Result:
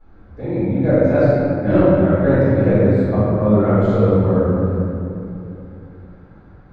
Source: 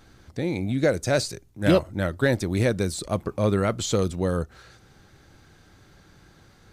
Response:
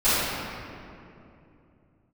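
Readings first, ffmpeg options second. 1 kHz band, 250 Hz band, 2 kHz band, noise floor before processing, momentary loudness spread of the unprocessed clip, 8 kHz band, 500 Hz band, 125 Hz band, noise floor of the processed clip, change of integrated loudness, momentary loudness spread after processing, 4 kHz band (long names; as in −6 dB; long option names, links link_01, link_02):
+7.5 dB, +10.5 dB, +1.0 dB, −56 dBFS, 8 LU, below −25 dB, +9.5 dB, +10.0 dB, −45 dBFS, +8.5 dB, 14 LU, below −10 dB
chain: -filter_complex "[0:a]lowpass=1300[link_01];[1:a]atrim=start_sample=2205,asetrate=42336,aresample=44100[link_02];[link_01][link_02]afir=irnorm=-1:irlink=0,volume=-11.5dB"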